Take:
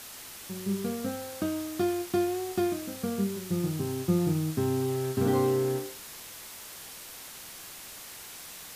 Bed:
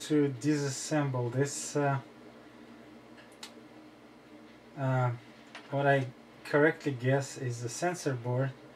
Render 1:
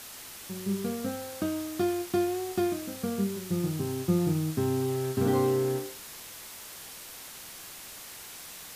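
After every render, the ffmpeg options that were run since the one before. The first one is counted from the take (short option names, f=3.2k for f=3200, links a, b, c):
-af anull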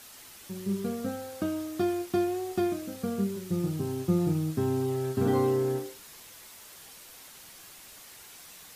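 -af "afftdn=nr=6:nf=-45"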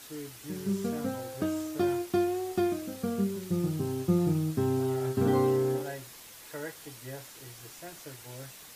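-filter_complex "[1:a]volume=-14.5dB[a];[0:a][a]amix=inputs=2:normalize=0"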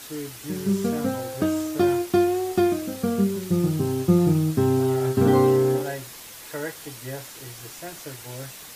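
-af "volume=7.5dB"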